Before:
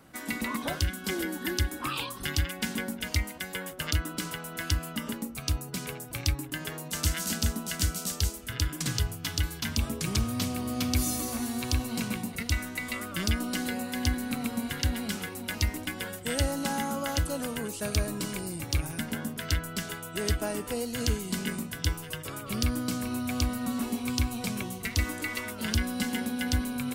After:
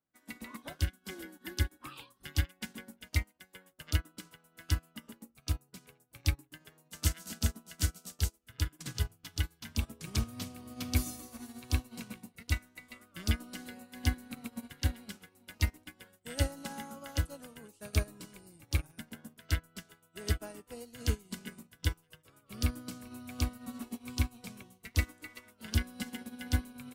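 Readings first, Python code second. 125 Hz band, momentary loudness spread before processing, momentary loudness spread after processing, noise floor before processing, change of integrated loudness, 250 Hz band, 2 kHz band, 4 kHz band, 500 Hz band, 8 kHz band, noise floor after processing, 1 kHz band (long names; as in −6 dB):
−3.0 dB, 6 LU, 16 LU, −42 dBFS, −5.5 dB, −10.5 dB, −8.5 dB, −8.5 dB, −11.0 dB, −9.0 dB, −71 dBFS, −11.5 dB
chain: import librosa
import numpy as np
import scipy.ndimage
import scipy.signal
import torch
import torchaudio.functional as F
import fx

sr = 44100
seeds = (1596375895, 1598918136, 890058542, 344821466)

y = fx.upward_expand(x, sr, threshold_db=-46.0, expansion=2.5)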